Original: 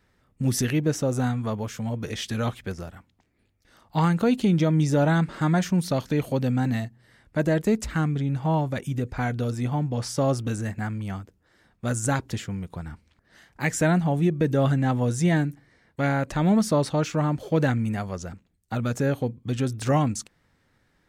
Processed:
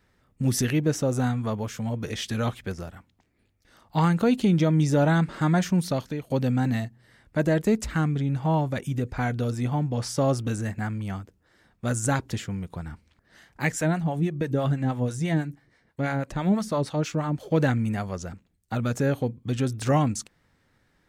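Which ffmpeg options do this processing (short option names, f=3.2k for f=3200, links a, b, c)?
-filter_complex "[0:a]asettb=1/sr,asplit=3[a][b][c];[a]atrim=end=13.724[d];[b]atrim=start=13.72:end=17.51,asetpts=PTS-STARTPTS,afade=t=in:d=0.004:c=qsin,afade=t=out:st=3.786:d=0.004:c=qsin,acrossover=split=600[e][f];[e]aeval=exprs='val(0)*(1-0.7/2+0.7/2*cos(2*PI*6.1*n/s))':c=same[g];[f]aeval=exprs='val(0)*(1-0.7/2-0.7/2*cos(2*PI*6.1*n/s))':c=same[h];[g][h]amix=inputs=2:normalize=0[i];[c]atrim=start=17.506[j];[d][i]acrossfade=d=0.004:c1=hsin:c2=qsin[k];[k][j]acrossfade=d=0.004:c1=qsin:c2=hsin,asplit=2[l][m];[l]atrim=end=6.3,asetpts=PTS-STARTPTS,afade=t=out:st=5.71:d=0.59:c=qsin:silence=0.0891251[n];[m]atrim=start=6.3,asetpts=PTS-STARTPTS,afade=t=in:d=0.004:c=hsin:silence=0.0891251[o];[n][o]concat=n=2:v=0:a=1"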